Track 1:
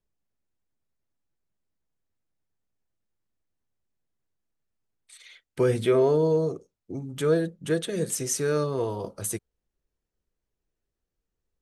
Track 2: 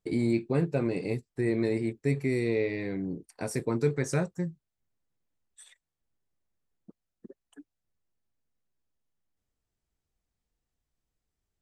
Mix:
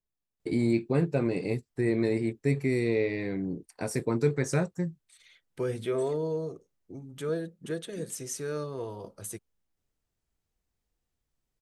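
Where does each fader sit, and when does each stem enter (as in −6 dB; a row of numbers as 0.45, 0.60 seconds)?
−8.5, +1.0 decibels; 0.00, 0.40 seconds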